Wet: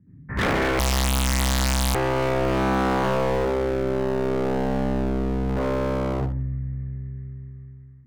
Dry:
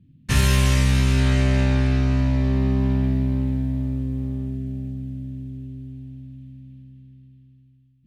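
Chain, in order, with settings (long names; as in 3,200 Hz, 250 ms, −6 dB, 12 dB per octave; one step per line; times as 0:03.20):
0:02.93–0:03.37: double-tracking delay 18 ms −13 dB
0:05.49–0:06.13: leveller curve on the samples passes 3
Butterworth low-pass 2,000 Hz 72 dB per octave
notch filter 1,100 Hz, Q 26
convolution reverb RT60 0.45 s, pre-delay 66 ms, DRR −12.5 dB
automatic gain control gain up to 3.5 dB
0:00.79–0:01.95: leveller curve on the samples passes 5
wave folding −16.5 dBFS
spectral tilt +1.5 dB per octave
level +2 dB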